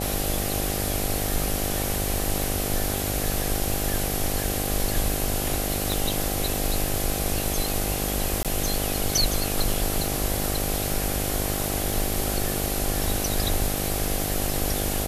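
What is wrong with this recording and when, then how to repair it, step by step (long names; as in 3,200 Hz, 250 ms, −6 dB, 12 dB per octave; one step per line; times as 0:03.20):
mains buzz 50 Hz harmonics 16 −30 dBFS
0:05.92: click
0:08.43–0:08.45: drop-out 17 ms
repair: click removal
hum removal 50 Hz, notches 16
repair the gap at 0:08.43, 17 ms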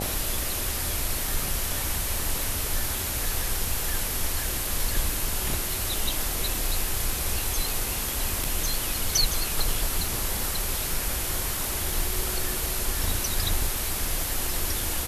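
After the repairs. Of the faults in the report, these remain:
0:05.92: click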